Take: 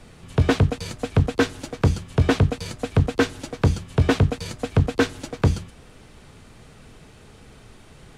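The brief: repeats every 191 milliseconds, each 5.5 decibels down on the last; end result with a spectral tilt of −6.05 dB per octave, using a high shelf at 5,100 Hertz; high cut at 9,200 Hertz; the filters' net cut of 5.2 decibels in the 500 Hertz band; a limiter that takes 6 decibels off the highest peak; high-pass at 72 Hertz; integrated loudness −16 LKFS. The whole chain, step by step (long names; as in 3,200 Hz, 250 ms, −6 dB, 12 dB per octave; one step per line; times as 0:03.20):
high-pass filter 72 Hz
low-pass filter 9,200 Hz
parametric band 500 Hz −6 dB
high-shelf EQ 5,100 Hz −7 dB
brickwall limiter −13.5 dBFS
repeating echo 191 ms, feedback 53%, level −5.5 dB
level +10.5 dB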